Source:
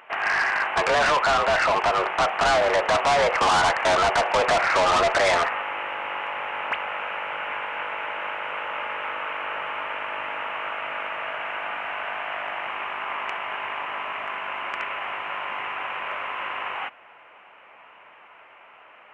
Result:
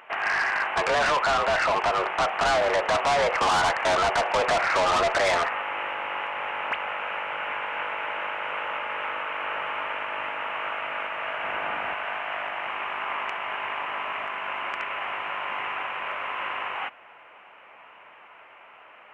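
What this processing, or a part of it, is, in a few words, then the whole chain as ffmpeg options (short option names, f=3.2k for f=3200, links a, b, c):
clipper into limiter: -filter_complex "[0:a]asoftclip=type=hard:threshold=-17dB,alimiter=limit=-19.5dB:level=0:latency=1:release=232,asettb=1/sr,asplit=3[a][b][c];[a]atrim=end=11.434[d];[b]atrim=start=11.43:end=11.94,asetpts=PTS-STARTPTS,afade=t=in:d=0.004:c=qsin,afade=t=out:st=0.506:d=0.004:c=qsin,lowshelf=f=420:g=8.5[e];[c]atrim=start=11.936[f];[d][e]acrossfade=d=0.004:c1=hsin:c2=qsin[g];[g][f]acrossfade=d=0.004:c1=qsin:c2=hsin"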